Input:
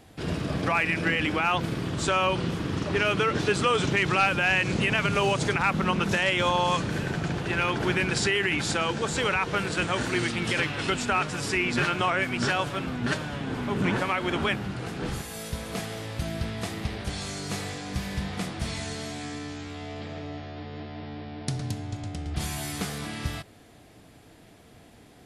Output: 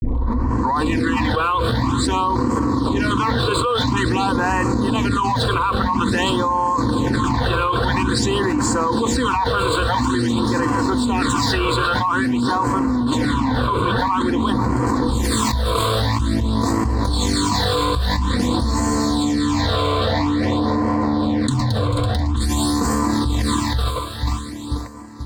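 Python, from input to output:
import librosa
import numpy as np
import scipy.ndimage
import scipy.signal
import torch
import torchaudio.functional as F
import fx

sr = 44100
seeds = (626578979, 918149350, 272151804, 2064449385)

p1 = fx.tape_start_head(x, sr, length_s=0.87)
p2 = fx.fixed_phaser(p1, sr, hz=580.0, stages=6)
p3 = p2 + fx.echo_single(p2, sr, ms=706, db=-23.0, dry=0)
p4 = np.sign(p3) * np.maximum(np.abs(p3) - 10.0 ** (-46.0 / 20.0), 0.0)
p5 = fx.ripple_eq(p4, sr, per_octave=1.0, db=10)
p6 = fx.echo_feedback(p5, sr, ms=487, feedback_pct=47, wet_db=-19)
p7 = fx.phaser_stages(p6, sr, stages=8, low_hz=240.0, high_hz=3700.0, hz=0.49, feedback_pct=5)
p8 = fx.high_shelf(p7, sr, hz=6000.0, db=-12.0)
p9 = fx.notch_comb(p8, sr, f0_hz=420.0)
p10 = fx.env_flatten(p9, sr, amount_pct=100)
y = p10 * 10.0 ** (4.5 / 20.0)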